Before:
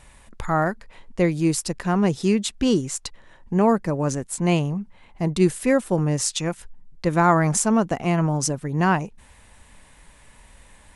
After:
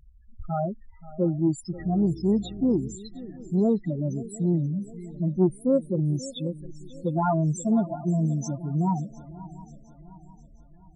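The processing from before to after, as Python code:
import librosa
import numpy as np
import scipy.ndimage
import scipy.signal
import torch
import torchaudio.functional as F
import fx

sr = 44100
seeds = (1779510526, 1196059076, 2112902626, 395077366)

p1 = fx.spec_topn(x, sr, count=4)
p2 = fx.dmg_buzz(p1, sr, base_hz=60.0, harmonics=7, level_db=-41.0, tilt_db=-4, odd_only=False, at=(1.77, 2.95), fade=0.02)
p3 = p2 + fx.echo_swing(p2, sr, ms=709, ratio=3, feedback_pct=43, wet_db=-17.5, dry=0)
p4 = fx.transformer_sat(p3, sr, knee_hz=190.0)
y = F.gain(torch.from_numpy(p4), -1.5).numpy()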